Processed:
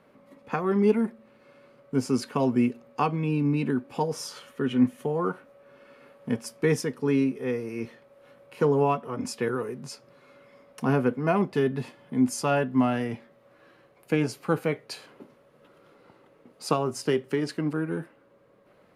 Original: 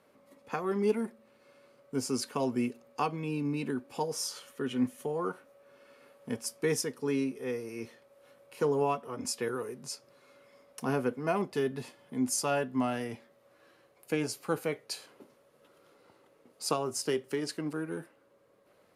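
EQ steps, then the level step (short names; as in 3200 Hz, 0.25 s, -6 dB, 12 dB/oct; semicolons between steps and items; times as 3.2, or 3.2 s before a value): tone controls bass +14 dB, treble -10 dB; bell 91 Hz -6 dB 0.66 oct; low shelf 260 Hz -9 dB; +6.0 dB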